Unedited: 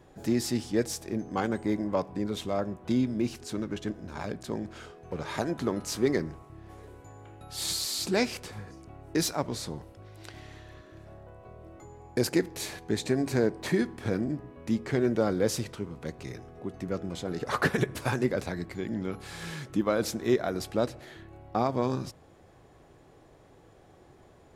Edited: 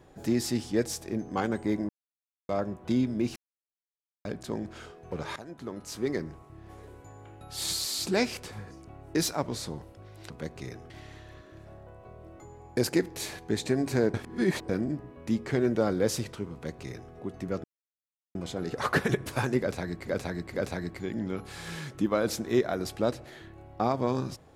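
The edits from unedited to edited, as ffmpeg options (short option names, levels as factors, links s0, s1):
-filter_complex "[0:a]asplit=13[s0][s1][s2][s3][s4][s5][s6][s7][s8][s9][s10][s11][s12];[s0]atrim=end=1.89,asetpts=PTS-STARTPTS,afade=t=out:st=1.886:d=0.004:c=hsin[s13];[s1]atrim=start=1.89:end=2.49,asetpts=PTS-STARTPTS,volume=0[s14];[s2]atrim=start=2.49:end=3.36,asetpts=PTS-STARTPTS,afade=t=in:d=0.004:c=hsin,afade=t=out:st=0.866:d=0.004:c=hsin[s15];[s3]atrim=start=3.36:end=4.25,asetpts=PTS-STARTPTS,volume=0[s16];[s4]atrim=start=4.25:end=5.36,asetpts=PTS-STARTPTS,afade=t=in:d=0.004:c=hsin,afade=t=out:st=1.106:d=0.004:c=hsin:silence=0.149624[s17];[s5]atrim=start=5.36:end=10.302,asetpts=PTS-STARTPTS,afade=t=in:d=1.36:silence=0.149624[s18];[s6]atrim=start=15.928:end=16.532[s19];[s7]atrim=start=10.298:end=13.542[s20];[s8]atrim=start=13.538:end=14.092,asetpts=PTS-STARTPTS,areverse[s21];[s9]atrim=start=14.088:end=17.04,asetpts=PTS-STARTPTS,afade=t=out:st=2.948:d=0.004:c=hsin,apad=pad_dur=0.71[s22];[s10]atrim=start=17.04:end=18.762,asetpts=PTS-STARTPTS,afade=t=in:d=0.004:c=hsin[s23];[s11]atrim=start=18.288:end=18.762[s24];[s12]atrim=start=18.288[s25];[s13][s14][s15][s16][s17][s18]concat=n=6:v=0:a=1[s26];[s26][s19]acrossfade=d=0.004:c1=hsin:c2=hsin[s27];[s27][s20]acrossfade=d=0.004:c1=hsin:c2=hsin[s28];[s28][s21]acrossfade=d=0.004:c1=hsin:c2=hsin[s29];[s22][s23]concat=n=2:v=0:a=1[s30];[s29][s30]acrossfade=d=0.004:c1=hsin:c2=hsin[s31];[s31][s24]acrossfade=d=0.004:c1=hsin:c2=hsin[s32];[s32][s25]acrossfade=d=0.004:c1=hsin:c2=hsin"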